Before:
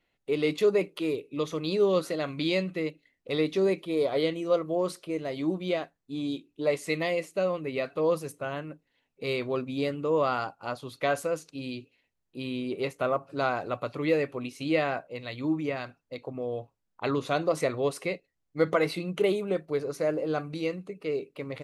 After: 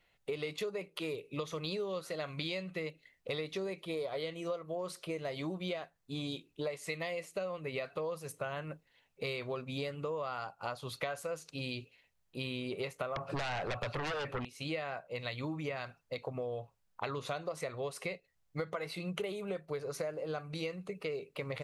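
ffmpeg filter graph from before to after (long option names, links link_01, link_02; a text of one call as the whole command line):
ffmpeg -i in.wav -filter_complex "[0:a]asettb=1/sr,asplit=3[link_01][link_02][link_03];[link_01]atrim=end=13.164[link_04];[link_02]atrim=start=13.16:end=14.45,asetpts=PTS-STARTPTS,afade=type=in:duration=0.004:curve=qsin,afade=type=out:start_time=1.286:duration=0.004:curve=qsin,highshelf=frequency=5900:gain=-11,acompressor=threshold=-28dB:ratio=6:attack=3.2:release=140:knee=1:detection=peak,aeval=exprs='0.141*sin(PI/2*5.62*val(0)/0.141)':channel_layout=same[link_05];[link_03]atrim=start=14.446[link_06];[link_04][link_05]acrossfade=duration=0.004:curve1=hsin:curve2=qsin[link_07];[link_07][link_06]acrossfade=duration=0.004:curve1=qsin:curve2=hsin,equalizer=frequency=290:width=1.7:gain=-11,acompressor=threshold=-39dB:ratio=12,volume=4.5dB" out.wav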